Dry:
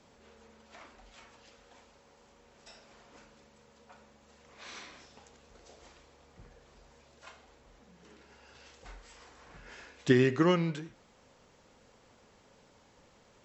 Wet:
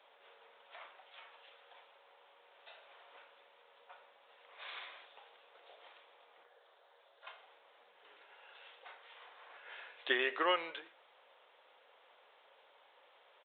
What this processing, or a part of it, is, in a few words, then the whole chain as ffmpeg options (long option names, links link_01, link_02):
musical greeting card: -filter_complex "[0:a]aresample=8000,aresample=44100,highpass=frequency=540:width=0.5412,highpass=frequency=540:width=1.3066,equalizer=frequency=3600:width_type=o:width=0.58:gain=4,asettb=1/sr,asplit=3[link_01][link_02][link_03];[link_01]atrim=end=6.434[link_04];[link_02]atrim=start=6.43:end=7.27,asetpts=PTS-STARTPTS,afade=type=in:duration=0.004:curve=qsin,afade=type=out:start_time=0.836:duration=0.004:curve=qsin,equalizer=frequency=250:width_type=o:width=0.67:gain=-11,equalizer=frequency=1000:width_type=o:width=0.67:gain=-3,equalizer=frequency=2500:width_type=o:width=0.67:gain=-8[link_05];[link_03]atrim=start=7.266[link_06];[link_04][link_05]acrossfade=duration=0.004:curve1=hsin:curve2=qsin[link_07];[link_07][link_06]acrossfade=duration=0.004:curve1=qsin:curve2=hsin"